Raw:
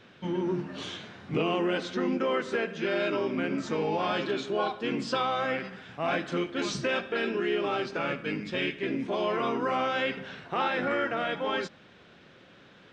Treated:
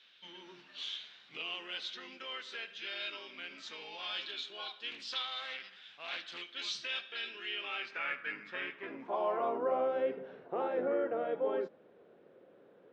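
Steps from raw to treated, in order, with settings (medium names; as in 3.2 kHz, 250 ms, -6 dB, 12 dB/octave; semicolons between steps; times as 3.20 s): band-pass sweep 3.6 kHz -> 470 Hz, 7.31–9.93 s; 4.91–6.42 s: loudspeaker Doppler distortion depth 0.25 ms; trim +1.5 dB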